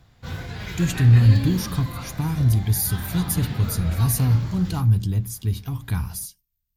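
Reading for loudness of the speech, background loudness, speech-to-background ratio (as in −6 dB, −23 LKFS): −21.5 LKFS, −33.0 LKFS, 11.5 dB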